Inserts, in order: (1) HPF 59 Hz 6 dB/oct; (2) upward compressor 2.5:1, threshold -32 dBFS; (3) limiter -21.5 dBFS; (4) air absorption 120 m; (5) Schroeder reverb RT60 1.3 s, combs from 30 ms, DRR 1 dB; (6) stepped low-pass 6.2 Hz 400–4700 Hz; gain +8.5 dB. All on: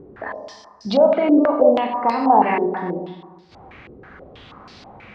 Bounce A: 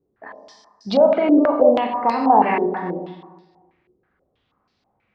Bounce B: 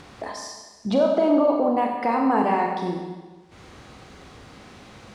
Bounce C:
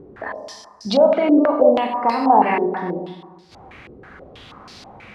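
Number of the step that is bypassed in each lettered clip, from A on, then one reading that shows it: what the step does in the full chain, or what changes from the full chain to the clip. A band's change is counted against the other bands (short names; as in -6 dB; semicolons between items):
2, momentary loudness spread change -5 LU; 6, 125 Hz band +3.0 dB; 4, 4 kHz band +3.0 dB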